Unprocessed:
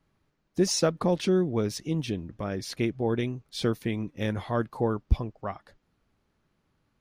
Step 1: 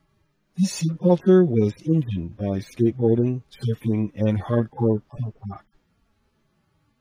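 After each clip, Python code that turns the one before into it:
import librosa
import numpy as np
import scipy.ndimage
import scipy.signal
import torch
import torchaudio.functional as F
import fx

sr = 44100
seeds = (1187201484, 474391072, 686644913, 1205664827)

y = fx.hpss_only(x, sr, part='harmonic')
y = y * librosa.db_to_amplitude(9.0)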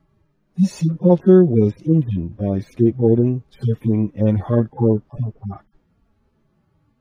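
y = fx.tilt_shelf(x, sr, db=6.0, hz=1400.0)
y = y * librosa.db_to_amplitude(-1.0)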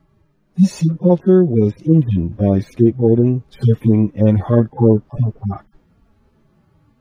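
y = fx.rider(x, sr, range_db=4, speed_s=0.5)
y = y * librosa.db_to_amplitude(3.0)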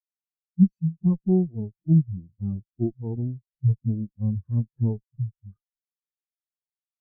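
y = fx.lower_of_two(x, sr, delay_ms=0.67)
y = fx.spectral_expand(y, sr, expansion=2.5)
y = y * librosa.db_to_amplitude(-5.0)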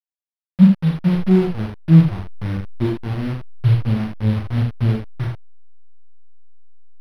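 y = fx.delta_hold(x, sr, step_db=-29.0)
y = fx.room_early_taps(y, sr, ms=(37, 78), db=(-3.5, -5.0))
y = np.interp(np.arange(len(y)), np.arange(len(y))[::6], y[::6])
y = y * librosa.db_to_amplitude(5.0)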